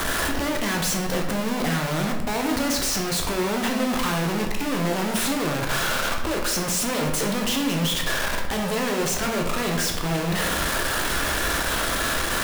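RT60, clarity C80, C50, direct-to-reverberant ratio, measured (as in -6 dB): 0.95 s, 8.0 dB, 5.5 dB, 0.5 dB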